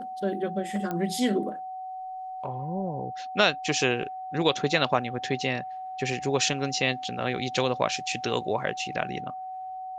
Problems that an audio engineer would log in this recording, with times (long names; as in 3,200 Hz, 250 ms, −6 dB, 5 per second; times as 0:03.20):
whistle 750 Hz −34 dBFS
0:00.91: click −18 dBFS